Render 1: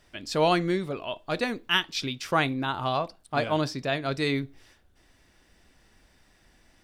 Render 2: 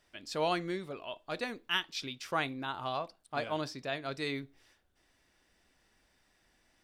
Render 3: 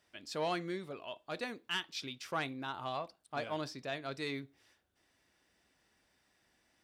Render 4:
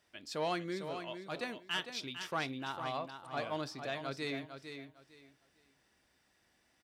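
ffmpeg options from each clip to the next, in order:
-af "lowshelf=f=240:g=-7,volume=-7.5dB"
-af "asoftclip=type=tanh:threshold=-23dB,highpass=70,volume=-2.5dB"
-af "aecho=1:1:453|906|1359:0.376|0.0827|0.0182"

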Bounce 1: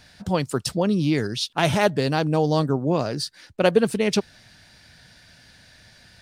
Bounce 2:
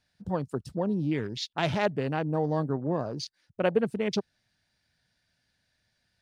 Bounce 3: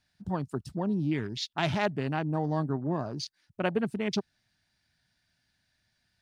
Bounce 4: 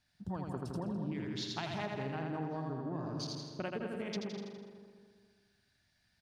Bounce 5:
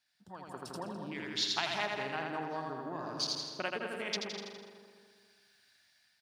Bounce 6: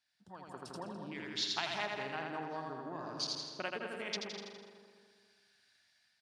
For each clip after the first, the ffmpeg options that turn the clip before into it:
-af "afwtdn=0.0251,volume=-7dB"
-af "equalizer=f=500:w=4:g=-10"
-filter_complex "[0:a]asplit=2[a][b];[b]aecho=0:1:82|164|246|328|410|492:0.631|0.315|0.158|0.0789|0.0394|0.0197[c];[a][c]amix=inputs=2:normalize=0,acompressor=threshold=-34dB:ratio=6,asplit=2[d][e];[e]adelay=206,lowpass=f=2.2k:p=1,volume=-6.5dB,asplit=2[f][g];[g]adelay=206,lowpass=f=2.2k:p=1,volume=0.52,asplit=2[h][i];[i]adelay=206,lowpass=f=2.2k:p=1,volume=0.52,asplit=2[j][k];[k]adelay=206,lowpass=f=2.2k:p=1,volume=0.52,asplit=2[l][m];[m]adelay=206,lowpass=f=2.2k:p=1,volume=0.52,asplit=2[n][o];[o]adelay=206,lowpass=f=2.2k:p=1,volume=0.52[p];[f][h][j][l][n][p]amix=inputs=6:normalize=0[q];[d][q]amix=inputs=2:normalize=0,volume=-2.5dB"
-af "highpass=f=1.3k:p=1,bandreject=f=6.3k:w=29,dynaudnorm=f=230:g=5:m=10dB"
-af "lowpass=9.7k,volume=-3dB"

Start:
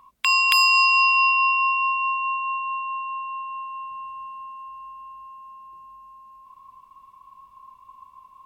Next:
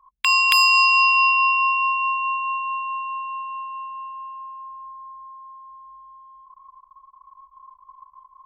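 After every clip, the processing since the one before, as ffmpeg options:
-af "anlmdn=0.0398,volume=1.5dB"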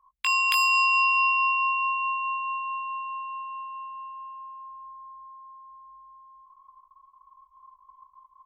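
-filter_complex "[0:a]asplit=2[a][b];[b]adelay=19,volume=-7.5dB[c];[a][c]amix=inputs=2:normalize=0,volume=-7dB"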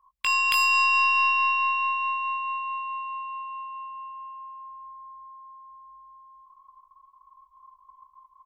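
-filter_complex "[0:a]aeval=exprs='0.355*(cos(1*acos(clip(val(0)/0.355,-1,1)))-cos(1*PI/2))+0.0158*(cos(4*acos(clip(val(0)/0.355,-1,1)))-cos(4*PI/2))+0.00447*(cos(5*acos(clip(val(0)/0.355,-1,1)))-cos(5*PI/2))+0.00282*(cos(7*acos(clip(val(0)/0.355,-1,1)))-cos(7*PI/2))':c=same,bandreject=f=6.4k:w=27,asplit=2[a][b];[b]adelay=210,highpass=300,lowpass=3.4k,asoftclip=type=hard:threshold=-17dB,volume=-20dB[c];[a][c]amix=inputs=2:normalize=0"

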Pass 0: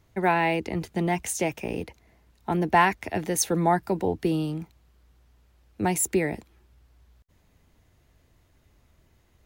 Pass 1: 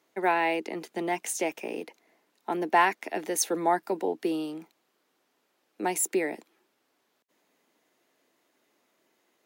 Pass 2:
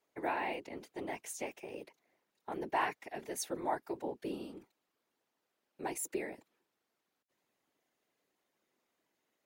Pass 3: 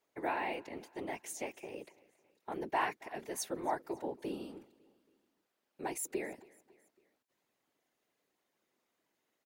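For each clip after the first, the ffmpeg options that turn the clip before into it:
-af "highpass=f=270:w=0.5412,highpass=f=270:w=1.3066,volume=-2dB"
-af "afftfilt=real='hypot(re,im)*cos(2*PI*random(0))':imag='hypot(re,im)*sin(2*PI*random(1))':win_size=512:overlap=0.75,volume=-5dB"
-af "aecho=1:1:276|552|828:0.0668|0.0341|0.0174"

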